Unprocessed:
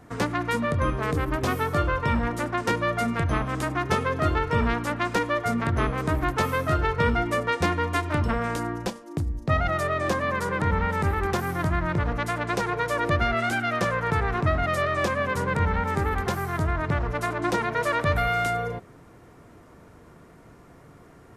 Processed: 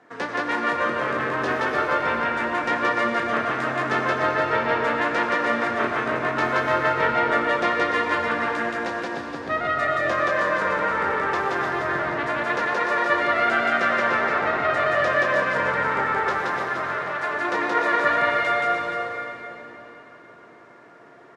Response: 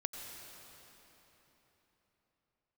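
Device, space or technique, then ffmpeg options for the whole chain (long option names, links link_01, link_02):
station announcement: -filter_complex "[0:a]asettb=1/sr,asplit=3[link_01][link_02][link_03];[link_01]atrim=end=16.504[link_04];[link_02]atrim=start=16.5:end=17.33,asetpts=PTS-STARTPTS,afade=type=in:duration=0.004:curve=qsin,afade=type=out:start_time=0.826:duration=0.004:curve=qsin,highpass=frequency=720:poles=1[link_05];[link_03]atrim=start=17.326[link_06];[link_04][link_05]acrossfade=duration=0.004:curve1=hsin:curve2=qsin[link_07];[link_07][link_06]acrossfade=duration=0.004:curve1=qsin:curve2=hsin,highpass=350,lowpass=4600,equalizer=frequency=1700:width_type=o:width=0.29:gain=6,aecho=1:1:34.99|174.9:0.355|0.891,aecho=1:1:296:0.447[link_08];[1:a]atrim=start_sample=2205[link_09];[link_08][link_09]afir=irnorm=-1:irlink=0"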